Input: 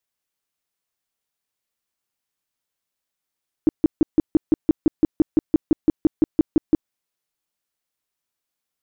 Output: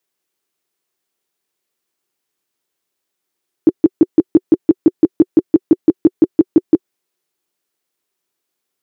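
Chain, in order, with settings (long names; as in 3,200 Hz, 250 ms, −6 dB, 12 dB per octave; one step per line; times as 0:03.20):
high-pass filter 120 Hz 12 dB per octave
parametric band 370 Hz +10.5 dB 0.46 octaves
in parallel at −0.5 dB: brickwall limiter −13.5 dBFS, peak gain reduction 10 dB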